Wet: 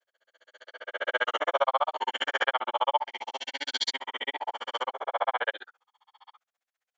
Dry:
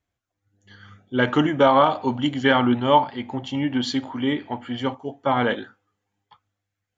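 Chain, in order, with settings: reverse spectral sustain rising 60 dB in 1.15 s; high-pass 590 Hz 24 dB/octave; compression 2.5:1, threshold -22 dBFS, peak gain reduction 8 dB; granulator 46 ms, grains 15 per s, spray 11 ms, pitch spread up and down by 0 st; trim +1.5 dB

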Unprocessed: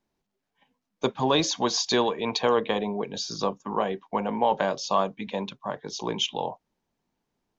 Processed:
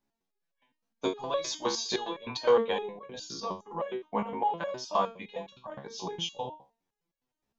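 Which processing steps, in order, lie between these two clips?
hum notches 50/100/150/200/250/300/350/400/450 Hz; resonator arpeggio 9.7 Hz 69–560 Hz; trim +5 dB

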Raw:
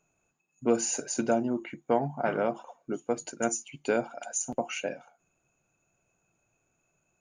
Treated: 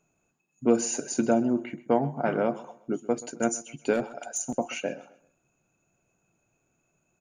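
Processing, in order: 3.93–4.50 s: hard clipper -23 dBFS, distortion -22 dB; peaking EQ 230 Hz +5 dB 1.9 oct; feedback delay 129 ms, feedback 33%, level -19 dB

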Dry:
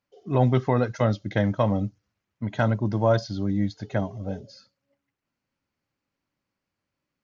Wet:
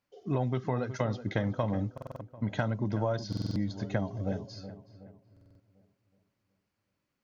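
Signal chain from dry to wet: compression 10:1, threshold -26 dBFS, peak gain reduction 11.5 dB; filtered feedback delay 372 ms, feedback 45%, low-pass 1.7 kHz, level -12 dB; buffer glitch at 1.93/3.28/5.32 s, samples 2048, times 5

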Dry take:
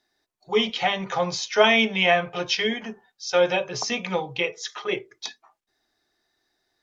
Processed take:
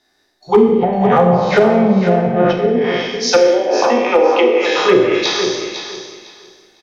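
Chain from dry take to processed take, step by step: spectral sustain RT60 1.17 s; low-pass that closes with the level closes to 330 Hz, closed at -16.5 dBFS; 2.66–4.78 s: steep high-pass 240 Hz 72 dB/octave; level rider gain up to 5 dB; hard clipper -11.5 dBFS, distortion -26 dB; vibrato 6.7 Hz 6 cents; feedback delay 504 ms, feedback 21%, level -9 dB; Schroeder reverb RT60 0.91 s, combs from 30 ms, DRR 5.5 dB; loudness maximiser +9.5 dB; trim -1 dB

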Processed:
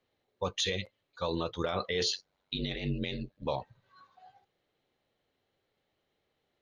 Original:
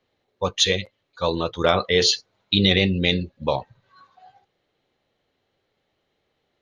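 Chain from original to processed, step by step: peak limiter -14 dBFS, peak gain reduction 11 dB; 2.12–3.46 s: ring modulator 47 Hz; trim -6.5 dB

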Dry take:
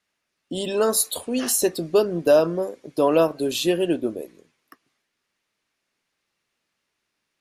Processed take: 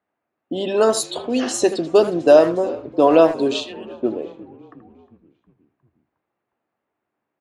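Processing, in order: 3.60–4.03 s: differentiator; on a send: frequency-shifting echo 359 ms, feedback 61%, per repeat -48 Hz, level -19.5 dB; on the sum: level-controlled noise filter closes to 1.1 kHz, open at -16 dBFS; cabinet simulation 100–8300 Hz, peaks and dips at 170 Hz -5 dB, 310 Hz +3 dB, 740 Hz +6 dB, 5.5 kHz -3 dB; speakerphone echo 80 ms, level -11 dB; trim +3.5 dB

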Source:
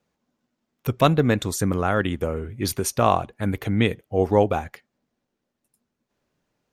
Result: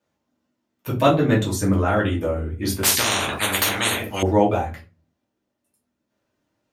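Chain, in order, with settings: high-pass 65 Hz; simulated room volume 130 m³, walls furnished, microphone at 2.6 m; 2.83–4.23 s: spectrum-flattening compressor 10:1; trim -5 dB

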